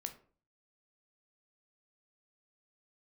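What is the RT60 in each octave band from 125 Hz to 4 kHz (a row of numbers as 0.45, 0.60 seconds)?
0.60, 0.50, 0.50, 0.40, 0.35, 0.25 seconds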